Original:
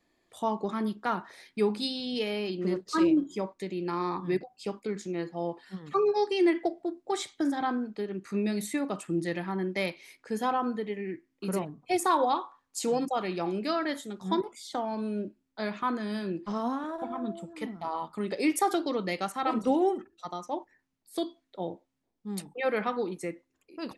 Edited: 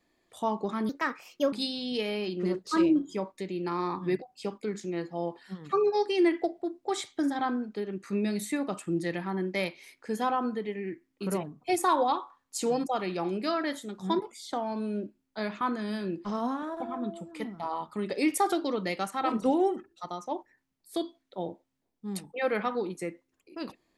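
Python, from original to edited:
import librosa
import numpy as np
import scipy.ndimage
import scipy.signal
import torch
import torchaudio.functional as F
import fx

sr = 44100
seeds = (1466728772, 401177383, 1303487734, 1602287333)

y = fx.edit(x, sr, fx.speed_span(start_s=0.89, length_s=0.85, speed=1.34), tone=tone)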